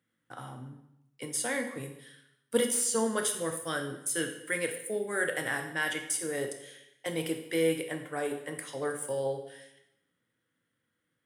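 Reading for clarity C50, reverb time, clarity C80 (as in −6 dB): 8.0 dB, 0.85 s, 10.5 dB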